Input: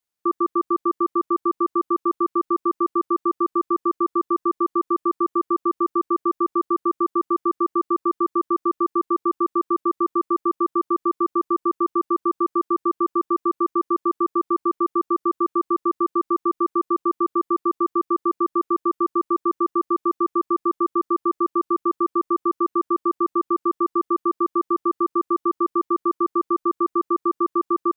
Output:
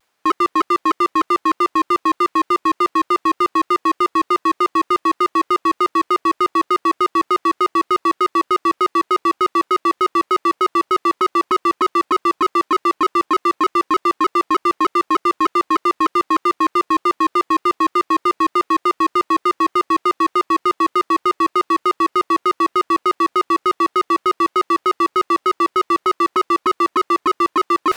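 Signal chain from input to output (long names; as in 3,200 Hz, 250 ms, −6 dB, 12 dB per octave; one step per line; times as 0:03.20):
reversed playback
upward compression, threshold −25 dBFS
reversed playback
mid-hump overdrive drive 29 dB, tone 1,200 Hz, clips at −12 dBFS
pitch modulation by a square or saw wave saw down 3.3 Hz, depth 160 cents
level +4.5 dB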